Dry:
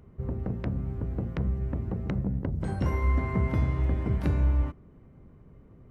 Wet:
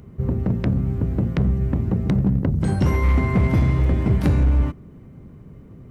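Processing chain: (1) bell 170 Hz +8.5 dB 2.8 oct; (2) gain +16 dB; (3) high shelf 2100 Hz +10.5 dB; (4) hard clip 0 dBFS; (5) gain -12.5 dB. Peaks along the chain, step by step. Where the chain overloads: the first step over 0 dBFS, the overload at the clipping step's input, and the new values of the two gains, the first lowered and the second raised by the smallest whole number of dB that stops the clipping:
-9.0, +7.0, +7.5, 0.0, -12.5 dBFS; step 2, 7.5 dB; step 2 +8 dB, step 5 -4.5 dB

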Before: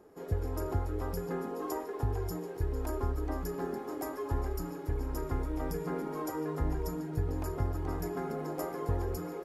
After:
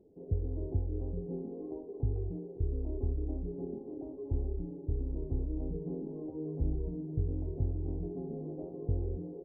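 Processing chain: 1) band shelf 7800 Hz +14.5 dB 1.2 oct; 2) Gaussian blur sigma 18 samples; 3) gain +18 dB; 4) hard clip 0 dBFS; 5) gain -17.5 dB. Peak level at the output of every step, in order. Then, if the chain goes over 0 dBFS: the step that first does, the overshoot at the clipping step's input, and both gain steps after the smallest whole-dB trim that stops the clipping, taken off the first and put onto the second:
-17.5, -20.0, -2.0, -2.0, -19.5 dBFS; no overload

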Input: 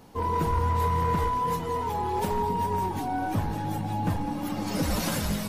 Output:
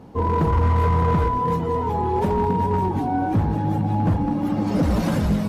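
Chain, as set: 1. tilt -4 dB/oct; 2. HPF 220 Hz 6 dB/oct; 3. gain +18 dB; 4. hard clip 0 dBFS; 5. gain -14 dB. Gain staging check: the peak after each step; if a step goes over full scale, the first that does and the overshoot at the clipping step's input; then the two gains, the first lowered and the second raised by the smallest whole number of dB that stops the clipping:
-1.0, -11.0, +7.0, 0.0, -14.0 dBFS; step 3, 7.0 dB; step 3 +11 dB, step 5 -7 dB

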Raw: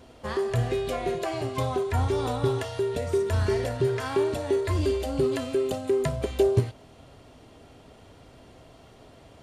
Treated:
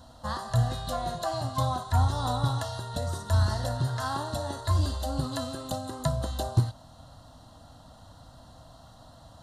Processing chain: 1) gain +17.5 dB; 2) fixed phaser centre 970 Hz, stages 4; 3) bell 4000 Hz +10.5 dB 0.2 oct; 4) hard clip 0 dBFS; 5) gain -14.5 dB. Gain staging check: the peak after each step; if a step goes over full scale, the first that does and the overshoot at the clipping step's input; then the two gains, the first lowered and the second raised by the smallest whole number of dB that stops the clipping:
+7.0, +4.5, +4.5, 0.0, -14.5 dBFS; step 1, 4.5 dB; step 1 +12.5 dB, step 5 -9.5 dB

